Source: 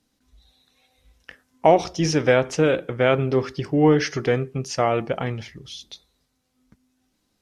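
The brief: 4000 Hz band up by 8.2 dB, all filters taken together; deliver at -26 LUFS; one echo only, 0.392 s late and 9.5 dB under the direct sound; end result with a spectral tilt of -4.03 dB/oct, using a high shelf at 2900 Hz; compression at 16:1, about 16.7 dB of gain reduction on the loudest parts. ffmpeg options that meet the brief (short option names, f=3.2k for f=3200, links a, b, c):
-af "highshelf=f=2.9k:g=3,equalizer=f=4k:t=o:g=9,acompressor=threshold=-27dB:ratio=16,aecho=1:1:392:0.335,volume=6dB"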